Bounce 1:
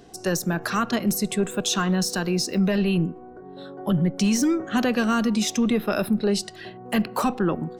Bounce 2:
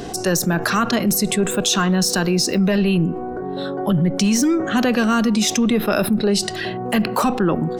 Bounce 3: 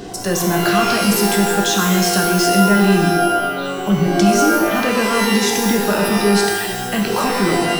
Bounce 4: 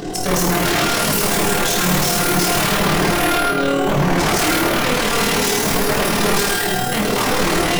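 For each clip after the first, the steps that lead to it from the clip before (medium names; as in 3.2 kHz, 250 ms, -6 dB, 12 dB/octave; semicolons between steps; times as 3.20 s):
level flattener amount 50%; trim +3 dB
pitch-shifted reverb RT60 1.1 s, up +12 st, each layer -2 dB, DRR 1.5 dB; trim -2.5 dB
AM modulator 38 Hz, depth 65%; wavefolder -19.5 dBFS; simulated room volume 34 m³, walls mixed, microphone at 0.47 m; trim +5.5 dB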